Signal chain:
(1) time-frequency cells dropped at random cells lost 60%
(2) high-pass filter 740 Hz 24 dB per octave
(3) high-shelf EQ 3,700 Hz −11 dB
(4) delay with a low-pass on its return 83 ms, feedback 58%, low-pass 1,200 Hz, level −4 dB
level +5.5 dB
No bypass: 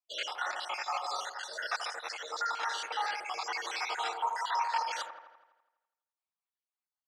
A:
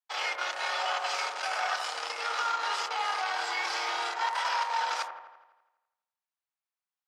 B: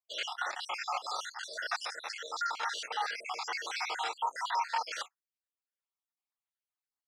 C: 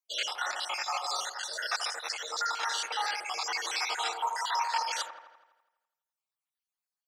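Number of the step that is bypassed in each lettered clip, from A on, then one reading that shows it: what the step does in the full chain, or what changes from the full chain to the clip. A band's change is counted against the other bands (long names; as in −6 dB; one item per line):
1, change in crest factor −3.5 dB
4, echo-to-direct ratio −6.5 dB to none audible
3, 8 kHz band +7.0 dB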